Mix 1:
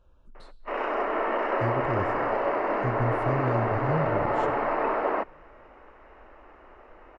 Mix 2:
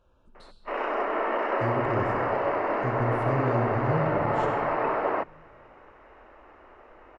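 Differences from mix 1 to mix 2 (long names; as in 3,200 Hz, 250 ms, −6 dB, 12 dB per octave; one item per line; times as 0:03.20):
speech: send +10.5 dB
master: add low-shelf EQ 80 Hz −10 dB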